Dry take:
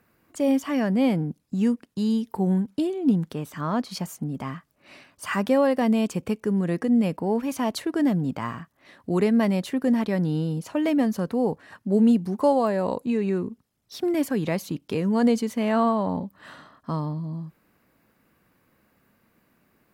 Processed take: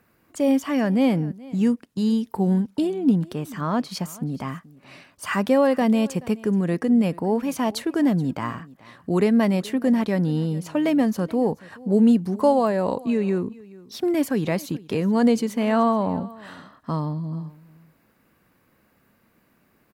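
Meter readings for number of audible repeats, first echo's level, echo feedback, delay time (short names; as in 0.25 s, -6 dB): 1, -21.5 dB, no steady repeat, 0.428 s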